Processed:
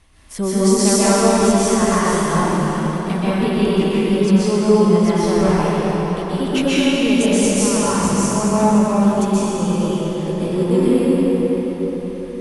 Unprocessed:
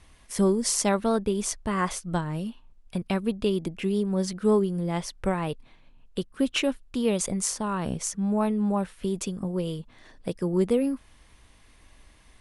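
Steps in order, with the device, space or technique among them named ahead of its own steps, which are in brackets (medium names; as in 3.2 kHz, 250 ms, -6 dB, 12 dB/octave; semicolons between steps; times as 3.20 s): cathedral (reverberation RT60 5.3 s, pre-delay 119 ms, DRR -11.5 dB)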